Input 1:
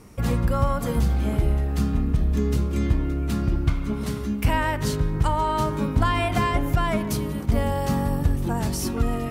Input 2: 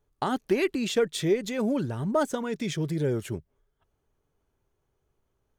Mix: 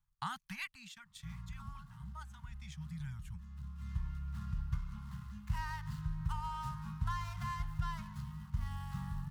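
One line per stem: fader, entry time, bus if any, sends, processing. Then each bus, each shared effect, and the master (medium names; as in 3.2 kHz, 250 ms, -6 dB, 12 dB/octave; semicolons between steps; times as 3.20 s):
-14.0 dB, 1.05 s, no send, median filter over 15 samples; band-stop 2.3 kHz, Q 7.8; auto duck -12 dB, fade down 2.00 s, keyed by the second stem
0.61 s -6.5 dB -> 0.95 s -18.5 dB -> 2.44 s -18.5 dB -> 3.10 s -11 dB, 0.00 s, no send, transient shaper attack 0 dB, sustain -8 dB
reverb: none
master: elliptic band-stop 170–990 Hz, stop band 60 dB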